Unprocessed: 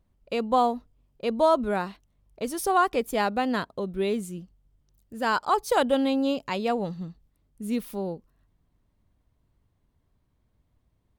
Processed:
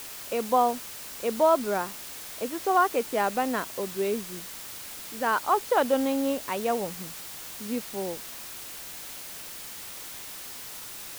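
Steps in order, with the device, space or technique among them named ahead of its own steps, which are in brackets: wax cylinder (band-pass 260–2400 Hz; wow and flutter 25 cents; white noise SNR 11 dB)

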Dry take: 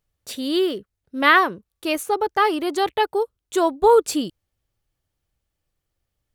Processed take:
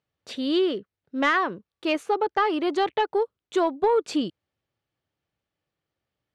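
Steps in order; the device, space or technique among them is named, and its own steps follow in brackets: AM radio (band-pass 140–3900 Hz; compression 5:1, threshold -17 dBFS, peak gain reduction 7.5 dB; saturation -10.5 dBFS, distortion -24 dB)

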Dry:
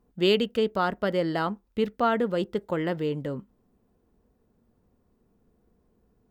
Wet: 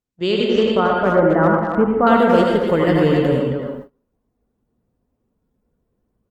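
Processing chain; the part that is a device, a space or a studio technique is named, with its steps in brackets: bass shelf 290 Hz +3 dB; 0.74–2.07 s: inverse Chebyshev low-pass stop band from 5.4 kHz, stop band 60 dB; speakerphone in a meeting room (reverberation RT60 0.75 s, pre-delay 72 ms, DRR 0 dB; speakerphone echo 270 ms, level -6 dB; level rider gain up to 16.5 dB; gate -32 dBFS, range -24 dB; trim -1 dB; Opus 24 kbps 48 kHz)

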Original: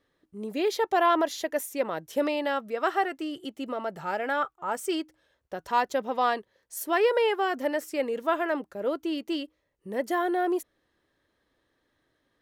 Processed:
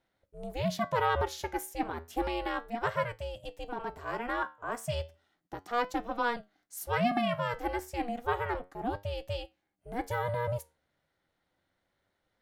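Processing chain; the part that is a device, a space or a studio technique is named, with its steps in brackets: alien voice (ring modulator 240 Hz; flange 0.32 Hz, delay 8.8 ms, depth 4.8 ms, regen +76%); trim +2 dB

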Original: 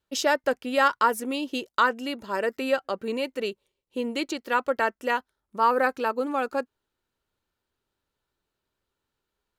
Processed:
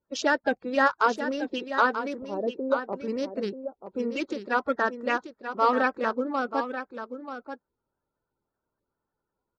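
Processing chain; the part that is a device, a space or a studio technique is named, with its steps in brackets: local Wiener filter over 15 samples; clip after many re-uploads (low-pass 6.1 kHz 24 dB/octave; coarse spectral quantiser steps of 30 dB); 2.18–2.93 s: inverse Chebyshev low-pass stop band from 3.6 kHz, stop band 70 dB; delay 935 ms -9.5 dB

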